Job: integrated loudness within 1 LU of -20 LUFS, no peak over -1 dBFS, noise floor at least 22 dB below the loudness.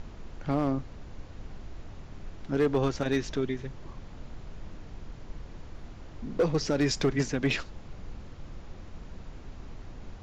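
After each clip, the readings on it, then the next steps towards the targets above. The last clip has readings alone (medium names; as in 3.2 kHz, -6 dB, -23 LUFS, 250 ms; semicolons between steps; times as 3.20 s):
clipped samples 0.4%; clipping level -18.5 dBFS; noise floor -46 dBFS; noise floor target -52 dBFS; loudness -29.5 LUFS; peak level -18.5 dBFS; loudness target -20.0 LUFS
-> clip repair -18.5 dBFS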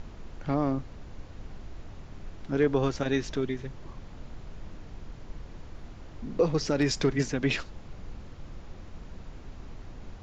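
clipped samples 0.0%; noise floor -46 dBFS; noise floor target -51 dBFS
-> noise print and reduce 6 dB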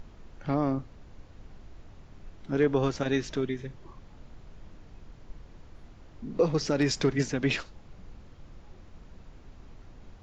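noise floor -52 dBFS; loudness -29.0 LUFS; peak level -12.5 dBFS; loudness target -20.0 LUFS
-> trim +9 dB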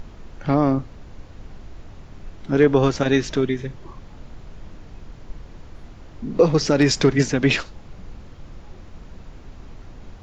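loudness -20.0 LUFS; peak level -3.5 dBFS; noise floor -43 dBFS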